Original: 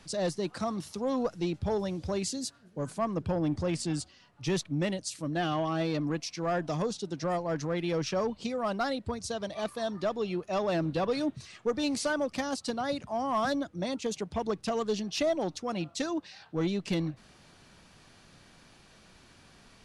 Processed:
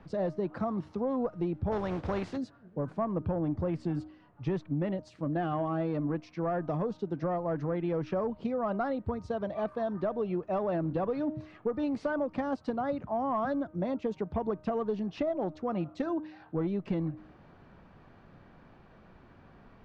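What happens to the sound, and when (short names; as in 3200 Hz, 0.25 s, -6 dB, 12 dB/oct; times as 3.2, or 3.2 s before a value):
1.71–2.36 spectral contrast lowered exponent 0.52
whole clip: LPF 1300 Hz 12 dB/oct; de-hum 309.1 Hz, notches 5; compressor, threshold -31 dBFS; gain +3.5 dB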